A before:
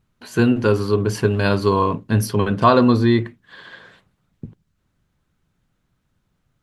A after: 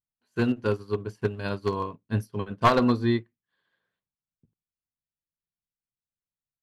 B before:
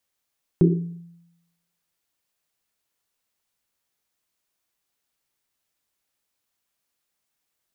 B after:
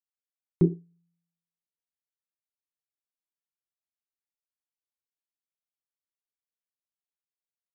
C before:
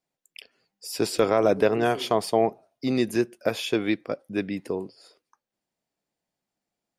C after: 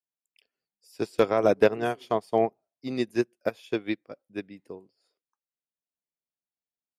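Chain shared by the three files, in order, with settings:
one-sided wavefolder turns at -9.5 dBFS; upward expansion 2.5:1, over -32 dBFS; normalise loudness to -27 LUFS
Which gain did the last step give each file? -3.5 dB, -1.5 dB, +3.5 dB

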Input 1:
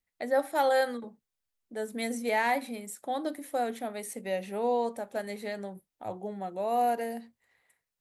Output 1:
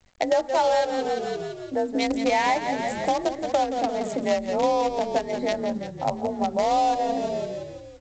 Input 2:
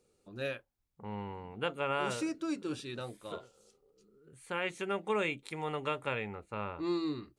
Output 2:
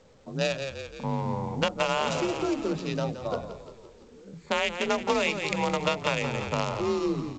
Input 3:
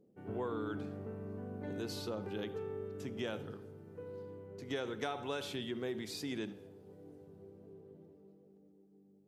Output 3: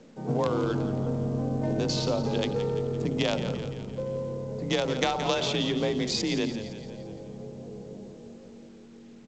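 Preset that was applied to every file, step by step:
local Wiener filter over 15 samples; peaking EQ 340 Hz -9 dB 0.81 oct; in parallel at -6.5 dB: bit crusher 5-bit; on the sum: peaking EQ 1.5 kHz -9 dB 0.89 oct; frequency shift +36 Hz; on a send: frequency-shifting echo 171 ms, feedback 54%, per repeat -39 Hz, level -11.5 dB; on the sum: compression 4:1, threshold -40 dBFS; hum notches 60/120/180/240/300 Hz; µ-law 128 kbps 16 kHz; peak normalisation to -9 dBFS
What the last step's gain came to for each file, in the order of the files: +18.5 dB, +17.0 dB, +18.0 dB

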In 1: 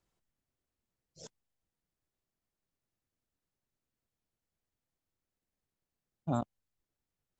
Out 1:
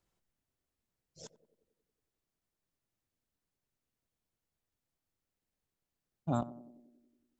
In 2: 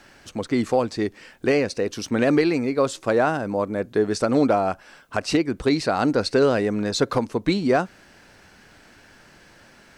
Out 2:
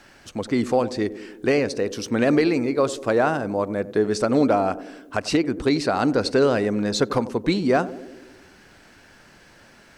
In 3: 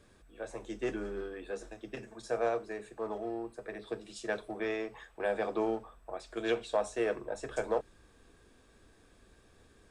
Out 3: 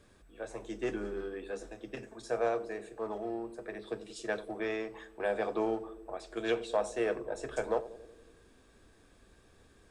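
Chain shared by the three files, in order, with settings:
band-passed feedback delay 92 ms, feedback 70%, band-pass 330 Hz, level -13 dB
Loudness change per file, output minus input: 0.0 LU, 0.0 LU, 0.0 LU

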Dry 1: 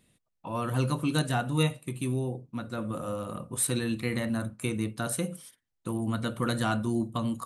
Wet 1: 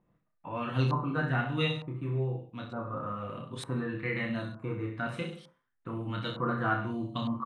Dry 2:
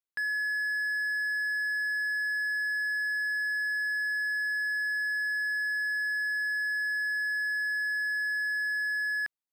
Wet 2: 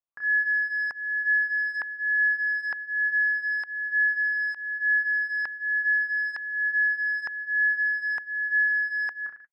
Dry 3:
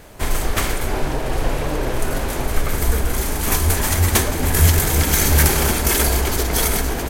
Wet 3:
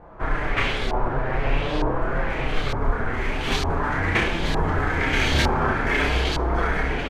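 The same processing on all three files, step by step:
reverse bouncing-ball echo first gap 30 ms, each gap 1.1×, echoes 5; flange 0.46 Hz, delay 5.7 ms, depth 2.6 ms, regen -35%; LFO low-pass saw up 1.1 Hz 920–4100 Hz; trim -1.5 dB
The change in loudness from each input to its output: -2.5 LU, +4.0 LU, -5.0 LU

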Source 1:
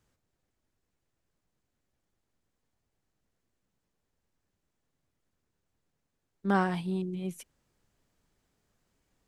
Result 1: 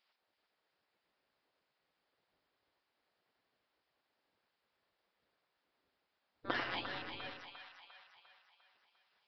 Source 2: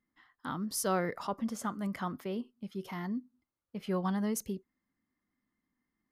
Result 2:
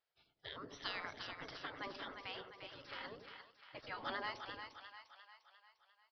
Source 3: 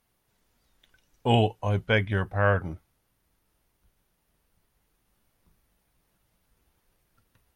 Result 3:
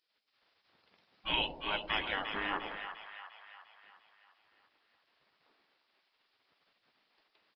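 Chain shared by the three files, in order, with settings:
resampled via 11.025 kHz; spectral gate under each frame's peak -20 dB weak; two-band feedback delay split 740 Hz, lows 94 ms, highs 350 ms, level -7 dB; trim +5 dB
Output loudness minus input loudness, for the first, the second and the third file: -10.5 LU, -11.5 LU, -10.0 LU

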